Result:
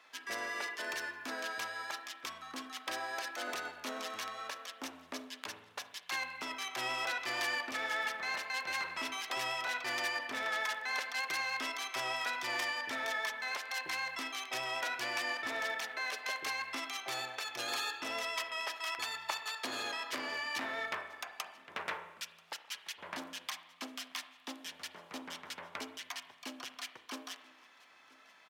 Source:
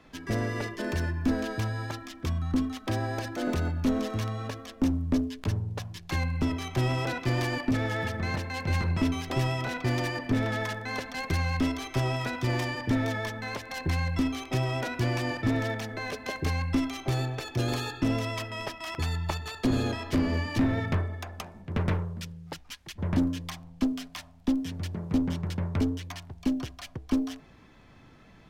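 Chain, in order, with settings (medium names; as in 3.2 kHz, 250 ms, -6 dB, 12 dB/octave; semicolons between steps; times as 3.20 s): high-pass 980 Hz 12 dB/octave; delay 986 ms -24 dB; spring tank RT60 1.2 s, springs 31/40 ms, chirp 45 ms, DRR 10.5 dB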